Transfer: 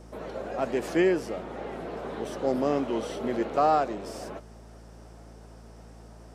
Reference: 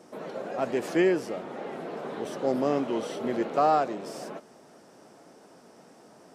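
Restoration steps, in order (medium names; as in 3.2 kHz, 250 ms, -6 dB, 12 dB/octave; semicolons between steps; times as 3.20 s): de-hum 55.8 Hz, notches 4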